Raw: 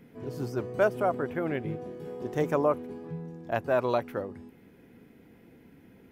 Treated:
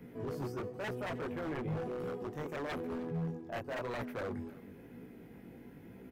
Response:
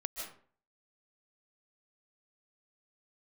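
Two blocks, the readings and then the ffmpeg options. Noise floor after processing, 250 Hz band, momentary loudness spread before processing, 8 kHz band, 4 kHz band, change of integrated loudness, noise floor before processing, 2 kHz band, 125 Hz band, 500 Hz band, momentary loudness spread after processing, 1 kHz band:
−54 dBFS, −5.5 dB, 14 LU, can't be measured, −2.0 dB, −9.0 dB, −57 dBFS, −7.0 dB, −4.0 dB, −10.5 dB, 15 LU, −10.5 dB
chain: -filter_complex "[0:a]highshelf=frequency=2900:gain=-12,areverse,acompressor=threshold=-35dB:ratio=6,areverse,crystalizer=i=1.5:c=0,flanger=delay=16:depth=5.8:speed=0.99,acrossover=split=130|1700[link_01][link_02][link_03];[link_02]aeval=exprs='0.0106*(abs(mod(val(0)/0.0106+3,4)-2)-1)':channel_layout=same[link_04];[link_01][link_04][link_03]amix=inputs=3:normalize=0,aecho=1:1:309:0.106,volume=6dB"

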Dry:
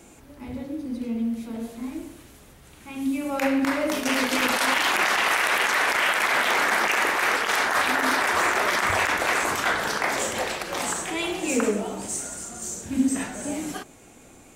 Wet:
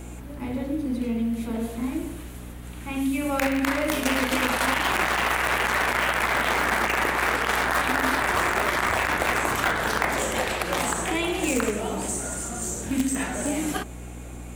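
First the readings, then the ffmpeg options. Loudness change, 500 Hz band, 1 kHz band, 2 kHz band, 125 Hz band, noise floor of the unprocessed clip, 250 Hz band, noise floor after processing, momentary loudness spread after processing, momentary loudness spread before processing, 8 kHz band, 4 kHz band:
−1.0 dB, +0.5 dB, −0.5 dB, −1.5 dB, +8.0 dB, −50 dBFS, +0.5 dB, −38 dBFS, 10 LU, 13 LU, −1.0 dB, −2.5 dB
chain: -filter_complex "[0:a]equalizer=frequency=5300:width=1.6:gain=-6.5,bandreject=frequency=50:width_type=h:width=6,bandreject=frequency=100:width_type=h:width=6,bandreject=frequency=150:width_type=h:width=6,bandreject=frequency=200:width_type=h:width=6,acrossover=split=230|1400[link_01][link_02][link_03];[link_01]acompressor=threshold=-42dB:ratio=4[link_04];[link_02]acompressor=threshold=-33dB:ratio=4[link_05];[link_03]acompressor=threshold=-35dB:ratio=4[link_06];[link_04][link_05][link_06]amix=inputs=3:normalize=0,aeval=exprs='val(0)+0.00631*(sin(2*PI*60*n/s)+sin(2*PI*2*60*n/s)/2+sin(2*PI*3*60*n/s)/3+sin(2*PI*4*60*n/s)/4+sin(2*PI*5*60*n/s)/5)':channel_layout=same,asplit=2[link_07][link_08];[link_08]acrusher=bits=3:mix=0:aa=0.000001,volume=-9.5dB[link_09];[link_07][link_09]amix=inputs=2:normalize=0,volume=6.5dB"

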